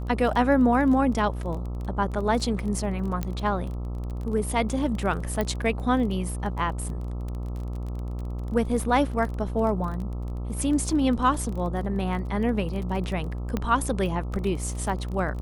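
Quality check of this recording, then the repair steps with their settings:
mains buzz 60 Hz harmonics 22 −31 dBFS
surface crackle 20 per second −32 dBFS
0:03.23: click −15 dBFS
0:05.41: click −13 dBFS
0:13.57: click −14 dBFS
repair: click removal
hum removal 60 Hz, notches 22

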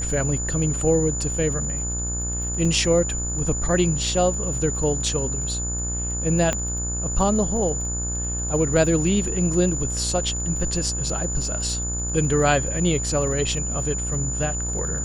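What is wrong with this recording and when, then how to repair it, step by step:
mains buzz 60 Hz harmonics 29 −29 dBFS
surface crackle 24 per second −32 dBFS
whistle 7,000 Hz −27 dBFS
0:02.65: drop-out 3.1 ms
0:06.53: click −9 dBFS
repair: click removal
hum removal 60 Hz, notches 29
notch filter 7,000 Hz, Q 30
repair the gap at 0:02.65, 3.1 ms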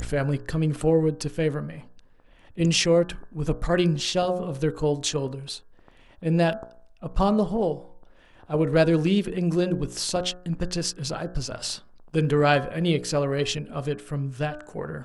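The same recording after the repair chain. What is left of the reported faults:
0:06.53: click

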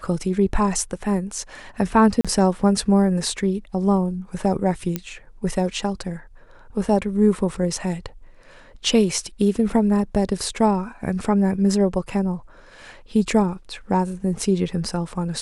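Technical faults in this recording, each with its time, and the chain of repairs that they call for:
0:02.21–0:02.25: drop-out 36 ms
0:04.96: click −10 dBFS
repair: click removal
repair the gap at 0:02.21, 36 ms

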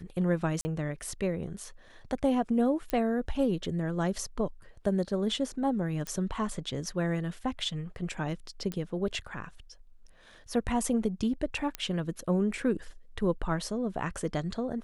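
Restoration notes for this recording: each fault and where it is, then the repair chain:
0:00.61–0:00.65: drop-out 40 ms
0:02.90: click −17 dBFS
0:06.07: click −20 dBFS
0:08.72: click −20 dBFS
0:11.75: click −16 dBFS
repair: click removal
repair the gap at 0:00.61, 40 ms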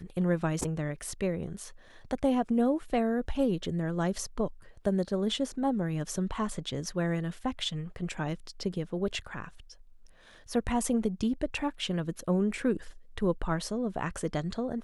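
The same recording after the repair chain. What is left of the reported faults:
none of them is left

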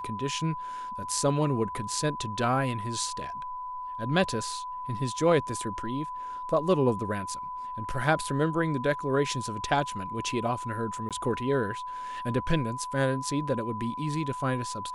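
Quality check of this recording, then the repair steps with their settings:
whistle 1,000 Hz −34 dBFS
0:11.09–0:11.11: drop-out 17 ms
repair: notch filter 1,000 Hz, Q 30
repair the gap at 0:11.09, 17 ms

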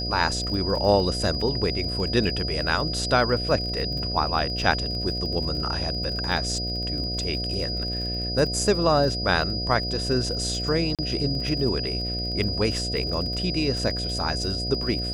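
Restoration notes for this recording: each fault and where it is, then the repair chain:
mains buzz 60 Hz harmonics 12 −31 dBFS
surface crackle 32 per second −32 dBFS
whistle 4,900 Hz −29 dBFS
0:10.95–0:10.99: drop-out 37 ms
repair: click removal
hum removal 60 Hz, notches 12
notch filter 4,900 Hz, Q 30
repair the gap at 0:10.95, 37 ms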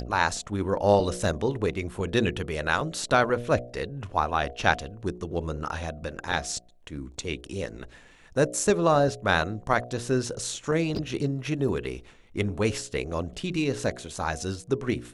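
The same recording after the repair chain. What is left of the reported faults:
none of them is left

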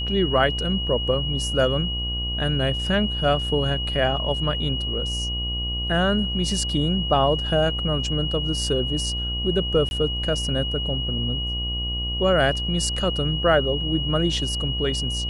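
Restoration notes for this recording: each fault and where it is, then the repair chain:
mains buzz 60 Hz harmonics 20 −29 dBFS
whistle 2,900 Hz −27 dBFS
0:09.89–0:09.91: drop-out 21 ms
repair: hum removal 60 Hz, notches 20
notch filter 2,900 Hz, Q 30
repair the gap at 0:09.89, 21 ms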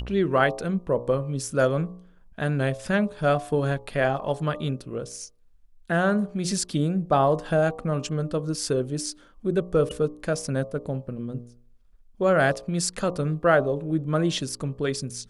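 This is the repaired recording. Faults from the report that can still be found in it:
none of them is left

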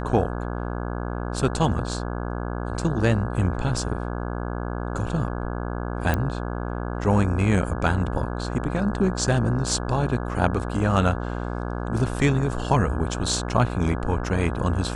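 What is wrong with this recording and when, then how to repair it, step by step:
mains buzz 60 Hz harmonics 28 −29 dBFS
0:06.14: click −10 dBFS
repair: click removal
hum removal 60 Hz, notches 28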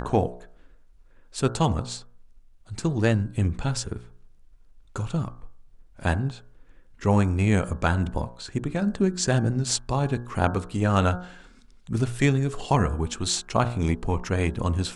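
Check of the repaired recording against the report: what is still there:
none of them is left

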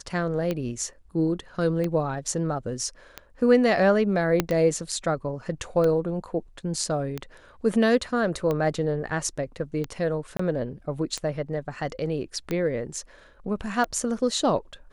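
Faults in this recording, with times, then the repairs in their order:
scratch tick 45 rpm −15 dBFS
0:04.40: click −7 dBFS
0:10.37–0:10.39: drop-out 24 ms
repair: click removal
repair the gap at 0:10.37, 24 ms

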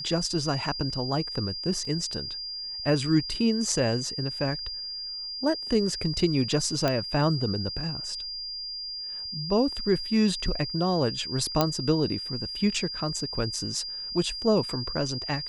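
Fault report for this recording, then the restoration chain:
whistle 4,800 Hz −33 dBFS
0:01.85: drop-out 2.8 ms
0:06.88: click −11 dBFS
0:11.61: click −8 dBFS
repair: click removal
notch filter 4,800 Hz, Q 30
repair the gap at 0:01.85, 2.8 ms

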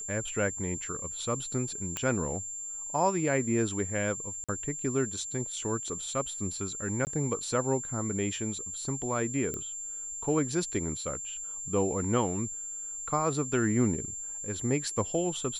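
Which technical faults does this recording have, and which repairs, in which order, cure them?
whistle 7,300 Hz −36 dBFS
0:01.97: click −16 dBFS
0:04.44–0:04.49: drop-out 46 ms
0:07.05–0:07.07: drop-out 19 ms
0:09.54: click −21 dBFS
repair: click removal
notch filter 7,300 Hz, Q 30
repair the gap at 0:04.44, 46 ms
repair the gap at 0:07.05, 19 ms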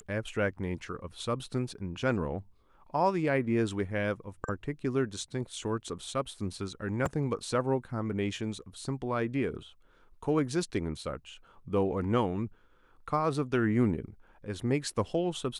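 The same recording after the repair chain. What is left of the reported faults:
none of them is left

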